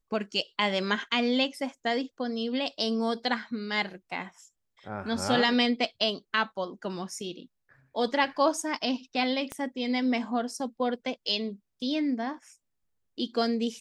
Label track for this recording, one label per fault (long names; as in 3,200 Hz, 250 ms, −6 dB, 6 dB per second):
9.520000	9.520000	click −20 dBFS